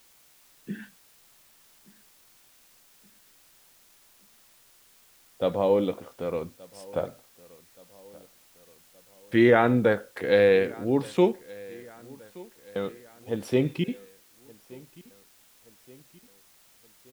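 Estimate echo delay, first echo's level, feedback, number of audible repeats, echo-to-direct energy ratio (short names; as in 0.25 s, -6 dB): 1.174 s, -23.0 dB, 52%, 3, -21.5 dB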